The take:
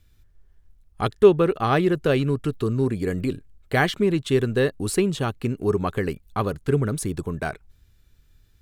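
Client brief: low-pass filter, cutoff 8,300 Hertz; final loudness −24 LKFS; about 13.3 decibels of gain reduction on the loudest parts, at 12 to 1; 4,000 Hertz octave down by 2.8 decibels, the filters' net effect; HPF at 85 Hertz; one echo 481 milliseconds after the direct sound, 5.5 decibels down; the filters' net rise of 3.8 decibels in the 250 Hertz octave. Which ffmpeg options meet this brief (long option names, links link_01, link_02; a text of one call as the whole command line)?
ffmpeg -i in.wav -af "highpass=85,lowpass=8300,equalizer=frequency=250:width_type=o:gain=5.5,equalizer=frequency=4000:width_type=o:gain=-3.5,acompressor=threshold=-19dB:ratio=12,aecho=1:1:481:0.531,volume=1dB" out.wav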